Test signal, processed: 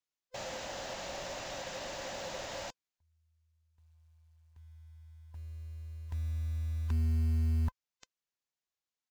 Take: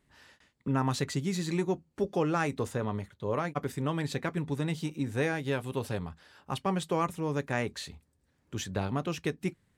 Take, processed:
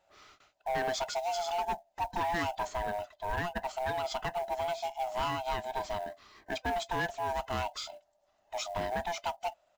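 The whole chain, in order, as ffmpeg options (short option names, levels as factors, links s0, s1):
-af "afftfilt=real='real(if(lt(b,1008),b+24*(1-2*mod(floor(b/24),2)),b),0)':imag='imag(if(lt(b,1008),b+24*(1-2*mod(floor(b/24),2)),b),0)':win_size=2048:overlap=0.75,aresample=16000,asoftclip=type=tanh:threshold=0.0473,aresample=44100,highshelf=f=2600:g=2,acrusher=bits=6:mode=log:mix=0:aa=0.000001"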